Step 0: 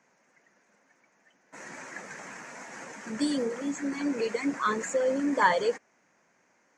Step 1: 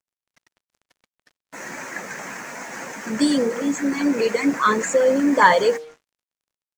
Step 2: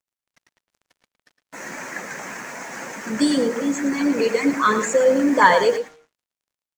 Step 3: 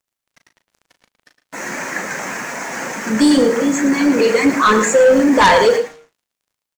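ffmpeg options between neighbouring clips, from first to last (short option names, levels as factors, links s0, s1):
-af "acontrast=38,bandreject=f=155:t=h:w=4,bandreject=f=310:t=h:w=4,bandreject=f=465:t=h:w=4,bandreject=f=620:t=h:w=4,bandreject=f=775:t=h:w=4,bandreject=f=930:t=h:w=4,acrusher=bits=7:mix=0:aa=0.5,volume=1.58"
-filter_complex "[0:a]asplit=2[s0][s1];[s1]adelay=110.8,volume=0.316,highshelf=f=4000:g=-2.49[s2];[s0][s2]amix=inputs=2:normalize=0"
-filter_complex "[0:a]asplit=2[s0][s1];[s1]adelay=37,volume=0.355[s2];[s0][s2]amix=inputs=2:normalize=0,asplit=2[s3][s4];[s4]aeval=exprs='0.944*sin(PI/2*3.98*val(0)/0.944)':c=same,volume=0.266[s5];[s3][s5]amix=inputs=2:normalize=0,volume=0.891"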